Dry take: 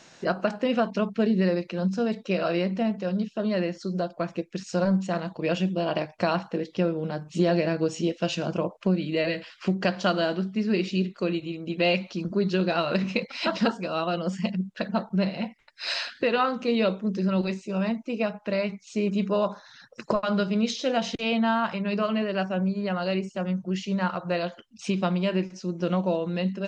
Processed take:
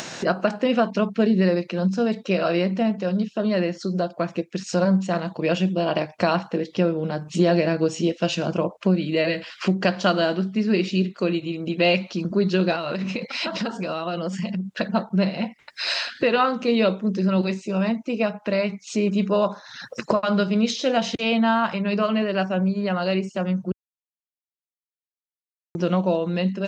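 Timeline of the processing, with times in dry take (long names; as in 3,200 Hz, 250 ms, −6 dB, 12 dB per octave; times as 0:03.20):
0:12.75–0:14.76: downward compressor 5 to 1, threshold −28 dBFS
0:23.72–0:25.75: silence
whole clip: high-pass filter 78 Hz; upward compression, threshold −27 dBFS; level +4 dB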